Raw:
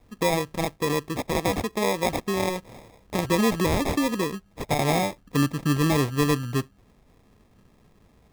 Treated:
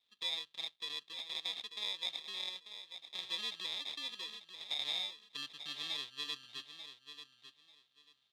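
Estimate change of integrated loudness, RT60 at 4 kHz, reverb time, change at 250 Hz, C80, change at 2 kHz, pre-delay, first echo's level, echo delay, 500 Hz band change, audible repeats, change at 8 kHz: -14.5 dB, no reverb, no reverb, -38.0 dB, no reverb, -16.0 dB, no reverb, -10.5 dB, 891 ms, -32.5 dB, 2, -20.0 dB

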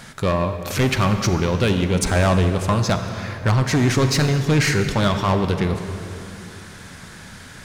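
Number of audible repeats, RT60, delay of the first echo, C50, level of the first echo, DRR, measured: no echo, 2.9 s, no echo, 7.5 dB, no echo, 7.0 dB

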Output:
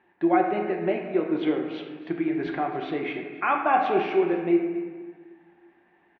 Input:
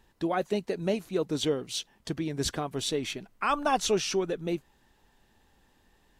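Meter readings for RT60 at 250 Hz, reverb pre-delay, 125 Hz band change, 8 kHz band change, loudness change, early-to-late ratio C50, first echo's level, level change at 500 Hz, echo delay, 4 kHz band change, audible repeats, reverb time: 2.1 s, 4 ms, -3.0 dB, under -35 dB, +4.5 dB, 4.0 dB, -16.5 dB, +4.5 dB, 275 ms, -10.0 dB, 1, 1.5 s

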